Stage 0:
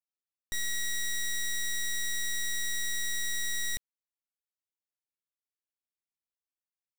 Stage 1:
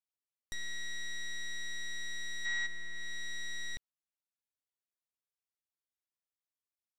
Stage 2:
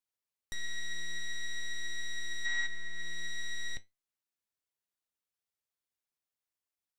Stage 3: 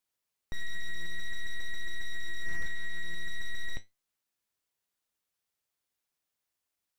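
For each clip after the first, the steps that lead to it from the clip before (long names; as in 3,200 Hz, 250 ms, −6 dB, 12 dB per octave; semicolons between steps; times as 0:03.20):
gain on a spectral selection 0:02.45–0:02.66, 690–9,100 Hz +11 dB; treble cut that deepens with the level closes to 2,400 Hz, closed at −27.5 dBFS; level −5 dB
flanger 0.48 Hz, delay 8 ms, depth 4 ms, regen +73%; level +5.5 dB
slew-rate limiting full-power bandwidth 13 Hz; level +6 dB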